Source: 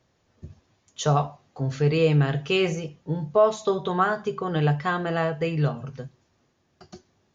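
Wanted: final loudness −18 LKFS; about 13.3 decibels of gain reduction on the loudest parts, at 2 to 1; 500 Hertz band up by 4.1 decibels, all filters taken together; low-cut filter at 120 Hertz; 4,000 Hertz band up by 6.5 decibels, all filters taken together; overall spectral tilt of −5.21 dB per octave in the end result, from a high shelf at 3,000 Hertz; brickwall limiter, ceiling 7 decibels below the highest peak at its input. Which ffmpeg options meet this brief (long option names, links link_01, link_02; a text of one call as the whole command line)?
ffmpeg -i in.wav -af "highpass=120,equalizer=frequency=500:width_type=o:gain=5,highshelf=frequency=3000:gain=3.5,equalizer=frequency=4000:width_type=o:gain=6.5,acompressor=threshold=-36dB:ratio=2,volume=17.5dB,alimiter=limit=-6.5dB:level=0:latency=1" out.wav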